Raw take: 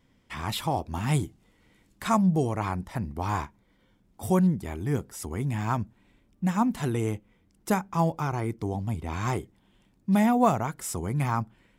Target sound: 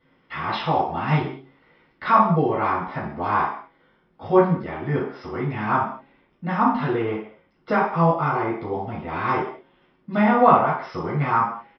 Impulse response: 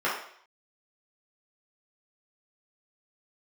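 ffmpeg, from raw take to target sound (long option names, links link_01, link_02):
-filter_complex "[0:a]bandreject=frequency=136.4:width_type=h:width=4,bandreject=frequency=272.8:width_type=h:width=4,bandreject=frequency=409.2:width_type=h:width=4,bandreject=frequency=545.6:width_type=h:width=4,bandreject=frequency=682:width_type=h:width=4,bandreject=frequency=818.4:width_type=h:width=4[link_01];[1:a]atrim=start_sample=2205,afade=type=out:start_time=0.3:duration=0.01,atrim=end_sample=13671[link_02];[link_01][link_02]afir=irnorm=-1:irlink=0,aresample=11025,aresample=44100,volume=-4.5dB"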